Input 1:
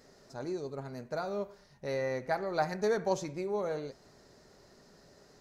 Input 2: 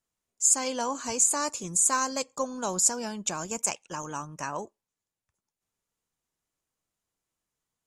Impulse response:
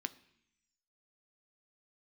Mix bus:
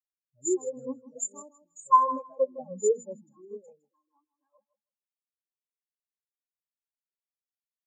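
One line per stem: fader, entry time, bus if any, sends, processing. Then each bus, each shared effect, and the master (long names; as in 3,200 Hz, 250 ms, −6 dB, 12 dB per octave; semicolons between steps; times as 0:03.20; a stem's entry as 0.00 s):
0.0 dB, 0.00 s, no send, no echo send, low-shelf EQ 460 Hz +11.5 dB; automatic ducking −8 dB, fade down 1.50 s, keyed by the second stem
−5.5 dB, 0.00 s, no send, echo send −4 dB, comb filter 3.7 ms, depth 90%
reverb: not used
echo: repeating echo 159 ms, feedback 57%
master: high-shelf EQ 12,000 Hz −9 dB; every bin expanded away from the loudest bin 4 to 1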